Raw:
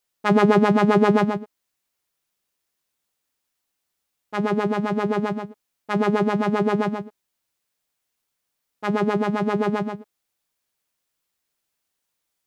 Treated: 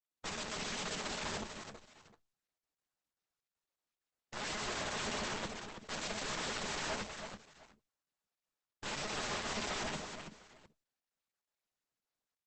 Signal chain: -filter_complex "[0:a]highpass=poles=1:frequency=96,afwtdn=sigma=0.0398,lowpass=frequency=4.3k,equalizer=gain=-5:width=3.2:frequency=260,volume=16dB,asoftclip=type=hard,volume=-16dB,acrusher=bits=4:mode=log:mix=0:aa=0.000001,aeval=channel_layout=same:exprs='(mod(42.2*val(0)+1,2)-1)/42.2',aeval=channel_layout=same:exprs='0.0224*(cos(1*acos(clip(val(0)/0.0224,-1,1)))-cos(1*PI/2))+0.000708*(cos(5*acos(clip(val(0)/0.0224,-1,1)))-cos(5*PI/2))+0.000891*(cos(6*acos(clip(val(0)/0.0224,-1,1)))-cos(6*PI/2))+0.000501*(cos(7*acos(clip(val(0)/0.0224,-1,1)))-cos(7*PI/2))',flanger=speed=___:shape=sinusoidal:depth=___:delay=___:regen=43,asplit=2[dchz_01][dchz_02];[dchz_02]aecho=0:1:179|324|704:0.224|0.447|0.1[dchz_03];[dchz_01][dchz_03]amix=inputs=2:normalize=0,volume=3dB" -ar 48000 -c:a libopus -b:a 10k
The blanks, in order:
1.1, 7.2, 6.2